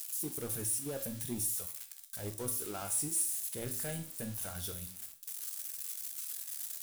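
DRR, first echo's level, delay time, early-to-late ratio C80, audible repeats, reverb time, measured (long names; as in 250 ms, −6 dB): 5.0 dB, no echo audible, no echo audible, 15.0 dB, no echo audible, 0.50 s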